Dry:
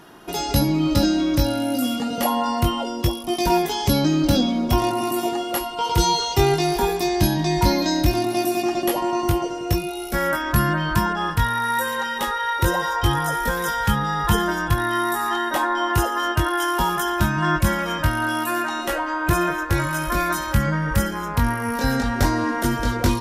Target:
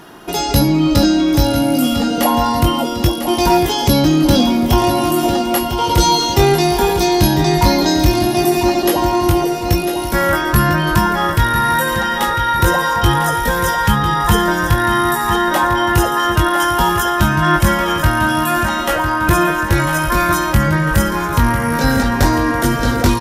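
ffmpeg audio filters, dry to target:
ffmpeg -i in.wav -af "aecho=1:1:1000|2000|3000|4000|5000:0.316|0.155|0.0759|0.0372|0.0182,acrusher=bits=11:mix=0:aa=0.000001,acontrast=83" out.wav

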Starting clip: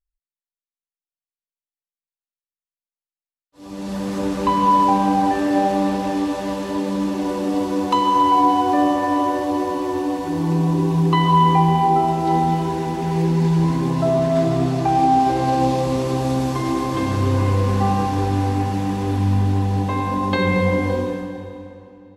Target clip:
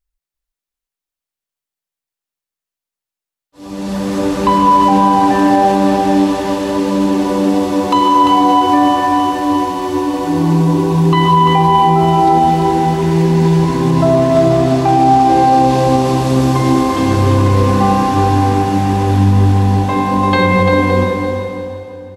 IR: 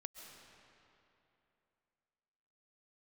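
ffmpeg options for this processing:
-filter_complex "[0:a]asettb=1/sr,asplit=3[link_01][link_02][link_03];[link_01]atrim=end=8.664[link_04];[link_02]atrim=start=8.66:end=10.14,asetpts=PTS-STARTPTS,afade=type=in:duration=0.004:curve=qsin,afade=type=out:start_time=1.476:duration=0.004:curve=qsin,equalizer=frequency=560:width=1.2:gain=-7[link_05];[link_03]atrim=start=10.136[link_06];[link_04][link_05]acrossfade=duration=0.004:curve1=hsin:curve2=qsin[link_07];[link_07][link_06]acrossfade=duration=0.004:curve1=qsin:curve2=hsin,asplit=2[link_08][link_09];[link_09]aecho=0:1:344|688|1032|1376:0.501|0.17|0.0579|0.0197[link_10];[link_08][link_10]amix=inputs=2:normalize=0,alimiter=level_in=8dB:limit=-1dB:release=50:level=0:latency=1,volume=-1dB"

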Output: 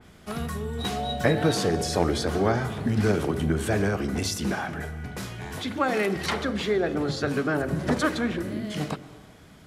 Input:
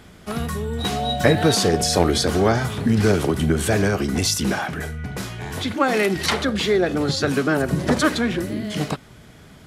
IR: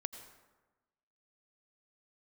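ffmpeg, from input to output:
-filter_complex "[0:a]bandreject=frequency=45.24:width_type=h:width=4,bandreject=frequency=90.48:width_type=h:width=4,bandreject=frequency=135.72:width_type=h:width=4,bandreject=frequency=180.96:width_type=h:width=4,bandreject=frequency=226.2:width_type=h:width=4,bandreject=frequency=271.44:width_type=h:width=4,bandreject=frequency=316.68:width_type=h:width=4,bandreject=frequency=361.92:width_type=h:width=4,bandreject=frequency=407.16:width_type=h:width=4,bandreject=frequency=452.4:width_type=h:width=4,bandreject=frequency=497.64:width_type=h:width=4,bandreject=frequency=542.88:width_type=h:width=4,bandreject=frequency=588.12:width_type=h:width=4,asplit=2[link_01][link_02];[1:a]atrim=start_sample=2205,asetrate=31752,aresample=44100[link_03];[link_02][link_03]afir=irnorm=-1:irlink=0,volume=-4dB[link_04];[link_01][link_04]amix=inputs=2:normalize=0,adynamicequalizer=threshold=0.02:dfrequency=2700:dqfactor=0.7:tfrequency=2700:tqfactor=0.7:attack=5:release=100:ratio=0.375:range=3:mode=cutabove:tftype=highshelf,volume=-9dB"

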